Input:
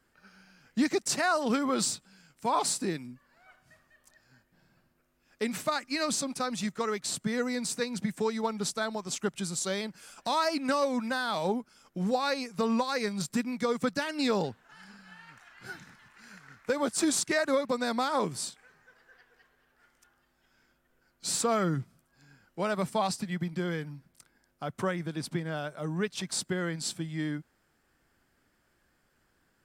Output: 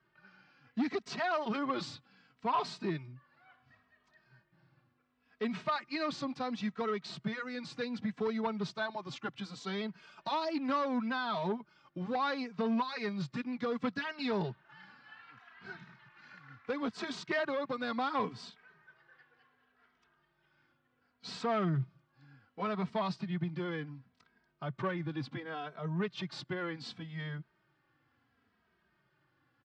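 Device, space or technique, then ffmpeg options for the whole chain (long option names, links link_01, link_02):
barber-pole flanger into a guitar amplifier: -filter_complex "[0:a]asplit=2[link_01][link_02];[link_02]adelay=2.8,afreqshift=-0.69[link_03];[link_01][link_03]amix=inputs=2:normalize=1,asoftclip=type=tanh:threshold=-26dB,highpass=83,equalizer=frequency=130:width_type=q:width=4:gain=6,equalizer=frequency=530:width_type=q:width=4:gain=-4,equalizer=frequency=1100:width_type=q:width=4:gain=4,lowpass=frequency=4100:width=0.5412,lowpass=frequency=4100:width=1.3066"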